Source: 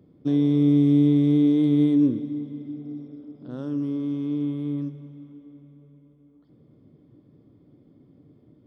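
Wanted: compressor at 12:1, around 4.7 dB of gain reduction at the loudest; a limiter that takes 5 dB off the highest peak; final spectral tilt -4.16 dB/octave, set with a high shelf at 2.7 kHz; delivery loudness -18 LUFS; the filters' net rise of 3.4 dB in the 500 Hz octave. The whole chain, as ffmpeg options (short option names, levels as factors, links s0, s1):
-af "equalizer=f=500:t=o:g=4,highshelf=f=2700:g=3.5,acompressor=threshold=0.126:ratio=12,volume=2.99,alimiter=limit=0.355:level=0:latency=1"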